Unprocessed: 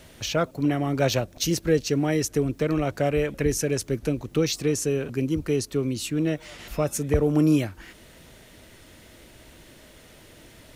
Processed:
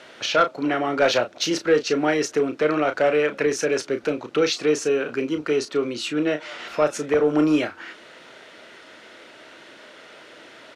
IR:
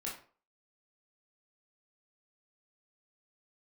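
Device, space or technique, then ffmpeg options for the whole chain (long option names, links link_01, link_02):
intercom: -filter_complex "[0:a]highpass=400,lowpass=4200,equalizer=frequency=1400:width_type=o:width=0.29:gain=7,asoftclip=type=tanh:threshold=-16.5dB,asplit=2[link_01][link_02];[link_02]adelay=33,volume=-9dB[link_03];[link_01][link_03]amix=inputs=2:normalize=0,volume=7dB"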